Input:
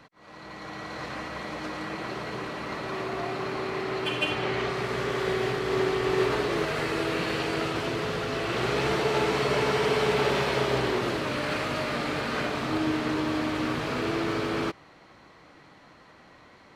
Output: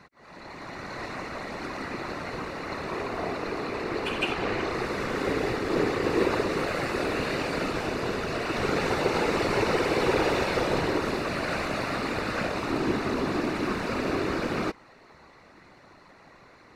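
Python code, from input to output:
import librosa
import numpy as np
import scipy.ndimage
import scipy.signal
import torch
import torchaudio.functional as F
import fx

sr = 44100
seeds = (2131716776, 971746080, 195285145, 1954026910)

y = fx.whisperise(x, sr, seeds[0])
y = fx.notch(y, sr, hz=3200.0, q=5.8)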